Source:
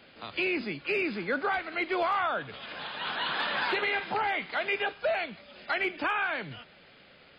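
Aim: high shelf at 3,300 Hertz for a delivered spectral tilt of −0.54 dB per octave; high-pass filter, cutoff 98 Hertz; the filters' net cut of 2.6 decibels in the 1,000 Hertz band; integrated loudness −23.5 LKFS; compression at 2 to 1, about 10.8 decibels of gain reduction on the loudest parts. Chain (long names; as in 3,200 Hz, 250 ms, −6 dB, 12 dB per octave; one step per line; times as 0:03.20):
high-pass filter 98 Hz
parametric band 1,000 Hz −4 dB
high-shelf EQ 3,300 Hz +3.5 dB
downward compressor 2 to 1, threshold −46 dBFS
level +17 dB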